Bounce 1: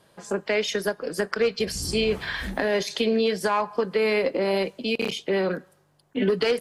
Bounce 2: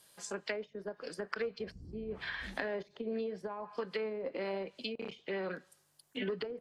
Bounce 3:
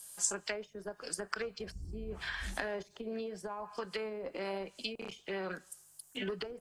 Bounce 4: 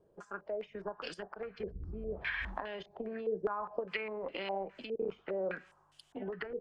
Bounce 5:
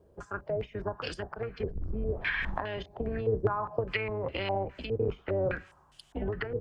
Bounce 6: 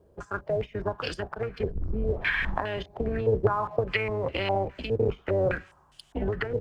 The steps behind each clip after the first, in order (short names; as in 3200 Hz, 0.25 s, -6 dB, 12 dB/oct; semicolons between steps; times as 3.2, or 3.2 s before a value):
pre-emphasis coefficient 0.9; treble ducked by the level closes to 350 Hz, closed at -32 dBFS; gain +5 dB
graphic EQ 125/250/500/1000/2000/4000/8000 Hz -10/-10/-11/-5/-9/-9/+7 dB; gain +11 dB
compressor 6:1, threshold -42 dBFS, peak gain reduction 15 dB; stepped low-pass 4.9 Hz 440–3100 Hz; gain +3.5 dB
octaver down 2 oct, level +2 dB; gain +5.5 dB
in parallel at -7.5 dB: crossover distortion -51 dBFS; on the sum: Doppler distortion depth 0.12 ms; gain +1.5 dB